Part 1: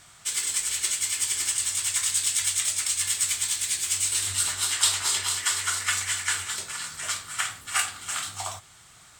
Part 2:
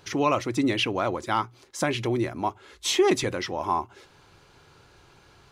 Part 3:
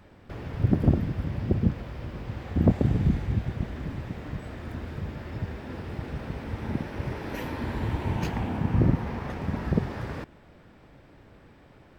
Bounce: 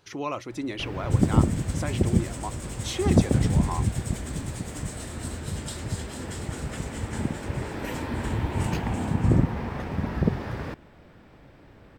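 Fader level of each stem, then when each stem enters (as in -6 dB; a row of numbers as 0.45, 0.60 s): -17.5, -8.0, +1.5 dB; 0.85, 0.00, 0.50 s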